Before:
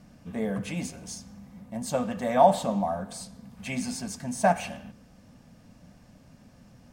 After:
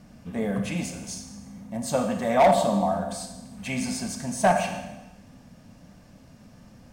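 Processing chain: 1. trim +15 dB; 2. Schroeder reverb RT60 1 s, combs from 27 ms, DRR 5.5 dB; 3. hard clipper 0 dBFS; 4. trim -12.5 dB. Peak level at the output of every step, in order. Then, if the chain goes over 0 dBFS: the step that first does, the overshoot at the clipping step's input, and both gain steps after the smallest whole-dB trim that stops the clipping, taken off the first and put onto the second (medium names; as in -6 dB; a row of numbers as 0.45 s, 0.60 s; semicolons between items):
+8.5 dBFS, +9.0 dBFS, 0.0 dBFS, -12.5 dBFS; step 1, 9.0 dB; step 1 +6 dB, step 4 -3.5 dB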